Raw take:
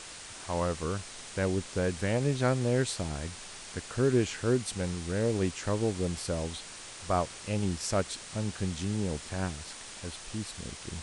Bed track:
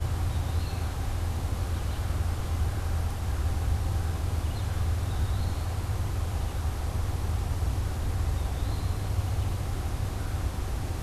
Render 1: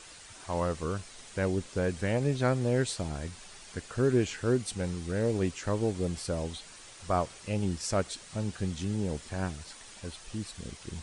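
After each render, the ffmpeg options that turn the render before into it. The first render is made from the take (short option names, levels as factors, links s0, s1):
-af "afftdn=nr=7:nf=-45"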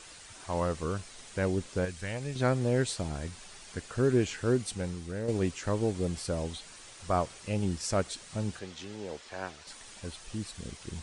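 -filter_complex "[0:a]asettb=1/sr,asplit=3[s0][s1][s2];[s0]atrim=end=1.854[s3];[s1]atrim=start=1.85:end=2.36,asetpts=PTS-STARTPTS,afade=t=in:d=0.004:c=qsin,afade=t=out:st=0.506:d=0.004:c=qsin,equalizer=f=320:w=0.33:g=-10.5[s4];[s2]atrim=start=2.356[s5];[s3][s4]acrossfade=d=0.004:c1=hsin:c2=qsin[s6];[s6][s5]acrossfade=d=0.004:c1=qsin:c2=hsin,asettb=1/sr,asplit=3[s7][s8][s9];[s7]atrim=end=8.594[s10];[s8]atrim=start=8.59:end=9.67,asetpts=PTS-STARTPTS,afade=t=in:d=0.004:c=qsin,afade=t=out:st=1.076:d=0.004:c=qsin,acrossover=split=360 6500:gain=0.141 1 0.2[s11][s12][s13];[s11][s12][s13]amix=inputs=3:normalize=0[s14];[s9]atrim=start=9.666[s15];[s10][s14]acrossfade=d=0.004:c1=hsin:c2=qsin[s16];[s16][s15]acrossfade=d=0.004:c1=qsin:c2=hsin,asplit=2[s17][s18];[s17]atrim=end=5.28,asetpts=PTS-STARTPTS,afade=t=out:st=4.63:d=0.65:silence=0.446684[s19];[s18]atrim=start=5.28,asetpts=PTS-STARTPTS,afade=t=in:d=0.004:c=hsin:silence=0.446684[s20];[s19][s20]concat=n=2:v=0:a=1"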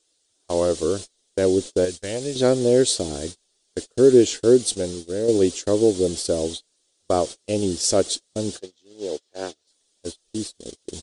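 -af "agate=range=0.0282:threshold=0.0126:ratio=16:detection=peak,firequalizer=gain_entry='entry(160,0);entry(310,14);entry(460,14);entry(930,0);entry(2400,1);entry(3400,14)':delay=0.05:min_phase=1"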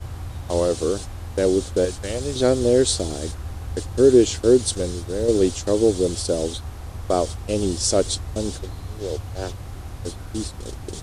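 -filter_complex "[1:a]volume=0.631[s0];[0:a][s0]amix=inputs=2:normalize=0"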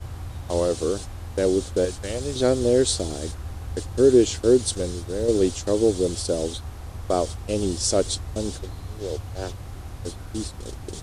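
-af "volume=0.794"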